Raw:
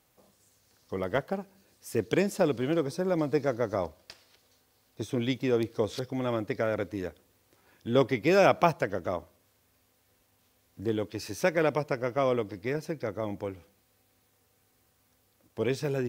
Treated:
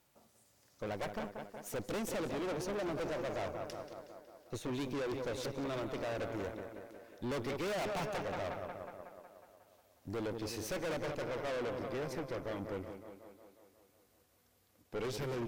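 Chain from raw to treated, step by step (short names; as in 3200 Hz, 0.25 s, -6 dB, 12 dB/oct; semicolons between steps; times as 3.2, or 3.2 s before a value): speed glide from 113% -> 95%; tape echo 0.182 s, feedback 67%, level -11 dB, low-pass 4900 Hz; tube stage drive 36 dB, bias 0.75; gain +1 dB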